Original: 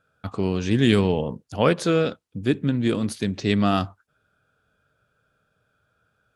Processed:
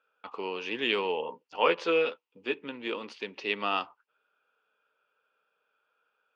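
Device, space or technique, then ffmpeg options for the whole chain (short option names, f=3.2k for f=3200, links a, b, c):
phone earpiece: -filter_complex "[0:a]highpass=f=370:p=1,highpass=460,equalizer=f=460:t=q:w=4:g=4,equalizer=f=660:t=q:w=4:g=-7,equalizer=f=940:t=q:w=4:g=7,equalizer=f=1.6k:t=q:w=4:g=-5,equalizer=f=2.7k:t=q:w=4:g=8,equalizer=f=3.9k:t=q:w=4:g=-7,lowpass=f=4.4k:w=0.5412,lowpass=f=4.4k:w=1.3066,asettb=1/sr,asplit=3[a][b][c];[a]atrim=end=1.224[d];[b]atrim=start=1.22:end=2.55,asetpts=PTS-STARTPTS,afade=t=in:d=0.004:c=qsin,afade=t=out:st=1.326:d=0.004:c=qsin,asplit=2[e][f];[f]adelay=12,volume=-6dB[g];[e][g]amix=inputs=2:normalize=0,atrim=end_sample=58653[h];[c]atrim=start=2.546[i];[d][h]acrossfade=d=0.004:c1=hsin:c2=qsin[j];[j][i]acrossfade=d=0.004:c1=qsin:c2=hsin,volume=-3.5dB"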